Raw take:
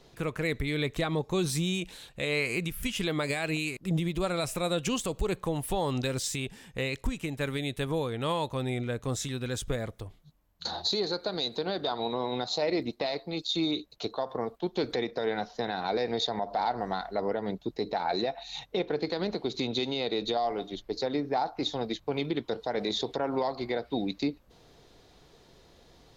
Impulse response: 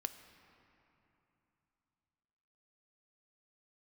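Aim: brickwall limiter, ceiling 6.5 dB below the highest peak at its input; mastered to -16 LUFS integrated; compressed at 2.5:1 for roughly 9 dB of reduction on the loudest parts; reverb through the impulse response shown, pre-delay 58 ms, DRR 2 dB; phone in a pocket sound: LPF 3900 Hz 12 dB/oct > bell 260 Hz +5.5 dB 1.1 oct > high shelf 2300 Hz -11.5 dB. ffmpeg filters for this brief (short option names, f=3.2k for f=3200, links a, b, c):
-filter_complex "[0:a]acompressor=threshold=-38dB:ratio=2.5,alimiter=level_in=5.5dB:limit=-24dB:level=0:latency=1,volume=-5.5dB,asplit=2[a][b];[1:a]atrim=start_sample=2205,adelay=58[c];[b][c]afir=irnorm=-1:irlink=0,volume=-0.5dB[d];[a][d]amix=inputs=2:normalize=0,lowpass=3.9k,equalizer=f=260:t=o:w=1.1:g=5.5,highshelf=f=2.3k:g=-11.5,volume=21.5dB"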